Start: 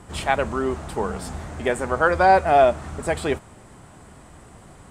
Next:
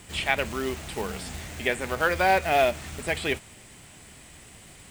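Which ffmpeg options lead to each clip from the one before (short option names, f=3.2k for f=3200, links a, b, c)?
-filter_complex "[0:a]acrusher=bits=5:mode=log:mix=0:aa=0.000001,highshelf=f=1.7k:t=q:w=1.5:g=10.5,acrossover=split=3200[a][b];[b]acompressor=threshold=-32dB:ratio=4:attack=1:release=60[c];[a][c]amix=inputs=2:normalize=0,volume=-5.5dB"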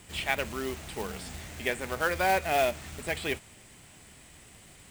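-af "acrusher=bits=3:mode=log:mix=0:aa=0.000001,volume=-4.5dB"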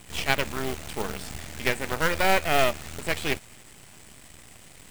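-af "aeval=exprs='max(val(0),0)':c=same,volume=7.5dB"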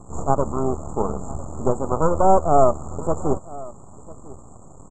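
-af "asuperstop=centerf=3100:order=20:qfactor=0.52,aecho=1:1:999:0.1,aresample=16000,aresample=44100,volume=8.5dB"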